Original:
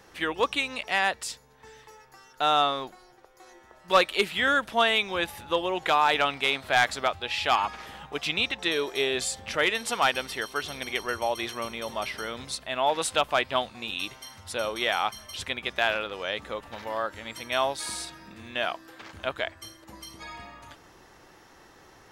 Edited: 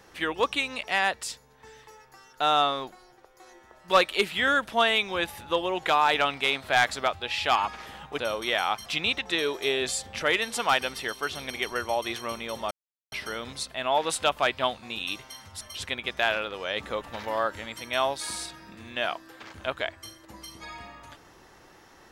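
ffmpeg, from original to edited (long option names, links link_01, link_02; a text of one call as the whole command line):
ffmpeg -i in.wav -filter_complex "[0:a]asplit=7[link_01][link_02][link_03][link_04][link_05][link_06][link_07];[link_01]atrim=end=8.192[link_08];[link_02]atrim=start=14.528:end=15.202[link_09];[link_03]atrim=start=8.188:end=12.04,asetpts=PTS-STARTPTS,afade=type=out:start_time=3.848:duration=0.004:curve=hsin,apad=pad_dur=0.41[link_10];[link_04]atrim=start=12.04:end=14.532,asetpts=PTS-STARTPTS,afade=type=in:duration=0.004:curve=hsin[link_11];[link_05]atrim=start=15.198:end=16.352[link_12];[link_06]atrim=start=16.348:end=17.252,asetpts=PTS-STARTPTS,volume=3dB[link_13];[link_07]atrim=start=17.248[link_14];[link_08][link_09]acrossfade=duration=0.004:curve1=hsin:curve2=hsin[link_15];[link_10][link_11]concat=n=2:v=0:a=1[link_16];[link_15][link_16]acrossfade=duration=0.004:curve1=hsin:curve2=hsin[link_17];[link_17][link_12]acrossfade=duration=0.004:curve1=hsin:curve2=hsin[link_18];[link_18][link_13]acrossfade=duration=0.004:curve1=hsin:curve2=hsin[link_19];[link_19][link_14]acrossfade=duration=0.004:curve1=hsin:curve2=hsin" out.wav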